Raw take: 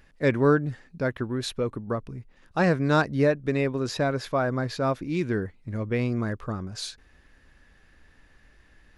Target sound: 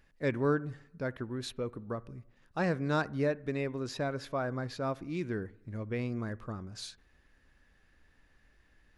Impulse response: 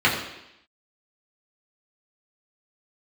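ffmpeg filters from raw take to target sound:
-filter_complex "[0:a]asplit=2[a][b];[1:a]atrim=start_sample=2205,lowpass=1.9k,adelay=51[c];[b][c]afir=irnorm=-1:irlink=0,volume=-39dB[d];[a][d]amix=inputs=2:normalize=0,volume=-8.5dB"

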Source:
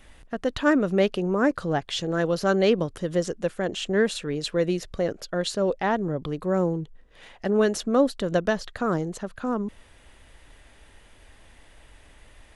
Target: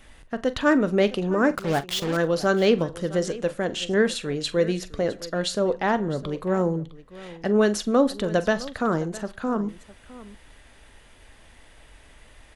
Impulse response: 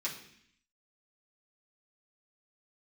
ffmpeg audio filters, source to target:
-filter_complex "[0:a]asplit=2[a][b];[1:a]atrim=start_sample=2205,afade=t=out:st=0.14:d=0.01,atrim=end_sample=6615,asetrate=26901,aresample=44100[c];[b][c]afir=irnorm=-1:irlink=0,volume=-20dB[d];[a][d]amix=inputs=2:normalize=0,asettb=1/sr,asplit=3[e][f][g];[e]atrim=end=1.554[h];[f]atrim=start=1.55:end=2.17,asetpts=PTS-STARTPTS,afade=t=in:d=0.004:c=qsin,afade=t=out:st=0.616:d=0.004:c=qsin,acrusher=bits=4:mix=0:aa=0.5[i];[g]atrim=start=2.166[j];[h][i]acrossfade=d=0.004:c1=hsin:c2=qsin[k];[k][j]acrossfade=d=0.004:c1=qsin:c2=hsin,aecho=1:1:43|659:0.168|0.126,volume=1dB"

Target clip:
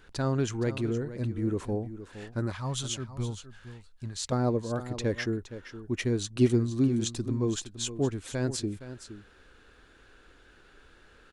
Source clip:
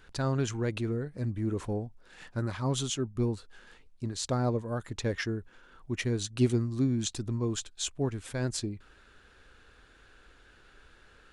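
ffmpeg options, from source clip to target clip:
-af "asetnsamples=n=441:p=0,asendcmd='2.52 equalizer g -10;4.32 equalizer g 4',equalizer=f=330:t=o:w=1.4:g=3,aecho=1:1:467:0.224"

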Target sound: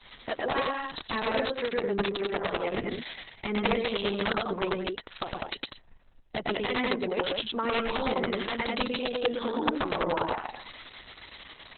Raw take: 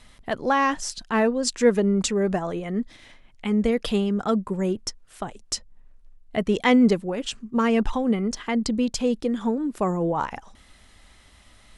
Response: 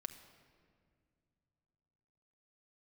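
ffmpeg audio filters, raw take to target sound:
-af "bass=f=250:g=-13,treble=f=4k:g=6,acompressor=threshold=-31dB:ratio=20,aecho=1:1:110.8|201.2:0.891|0.631,aresample=16000,aeval=exprs='(mod(15*val(0)+1,2)-1)/15':c=same,aresample=44100,adynamicequalizer=threshold=0.00447:dfrequency=220:dqfactor=1.4:tfrequency=220:tqfactor=1.4:attack=5:release=100:ratio=0.375:range=2:mode=cutabove:tftype=bell,volume=5dB" -ar 48000 -c:a libopus -b:a 6k

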